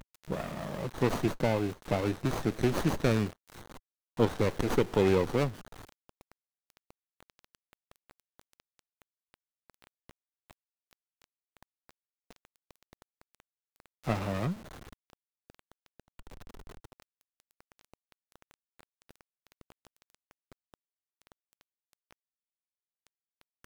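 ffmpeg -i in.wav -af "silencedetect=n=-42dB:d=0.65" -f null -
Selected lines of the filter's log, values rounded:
silence_start: 22.13
silence_end: 23.07 | silence_duration: 0.94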